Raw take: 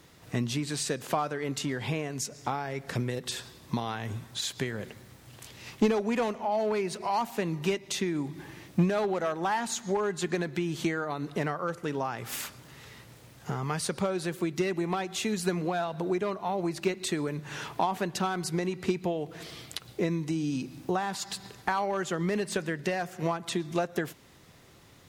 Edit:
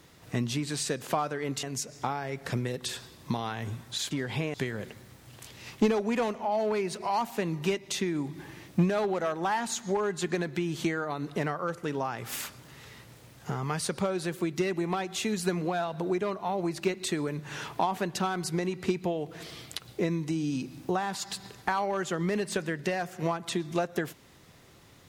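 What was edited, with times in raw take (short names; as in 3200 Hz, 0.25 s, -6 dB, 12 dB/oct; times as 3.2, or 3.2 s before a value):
1.63–2.06 move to 4.54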